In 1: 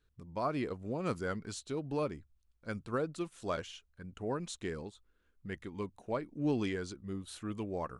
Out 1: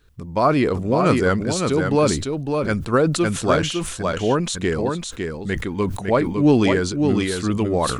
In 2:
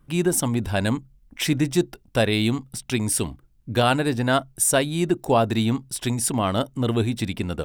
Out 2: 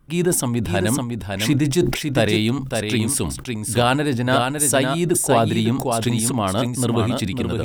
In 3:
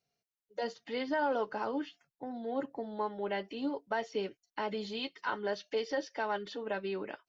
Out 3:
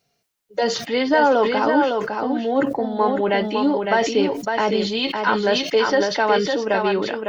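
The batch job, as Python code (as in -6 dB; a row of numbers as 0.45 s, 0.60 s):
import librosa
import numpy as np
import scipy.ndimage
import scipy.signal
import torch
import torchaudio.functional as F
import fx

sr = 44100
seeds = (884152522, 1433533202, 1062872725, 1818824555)

y = x + 10.0 ** (-5.0 / 20.0) * np.pad(x, (int(556 * sr / 1000.0), 0))[:len(x)]
y = fx.sustainer(y, sr, db_per_s=69.0)
y = y * 10.0 ** (-20 / 20.0) / np.sqrt(np.mean(np.square(y)))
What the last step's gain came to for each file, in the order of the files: +16.5 dB, +1.5 dB, +15.0 dB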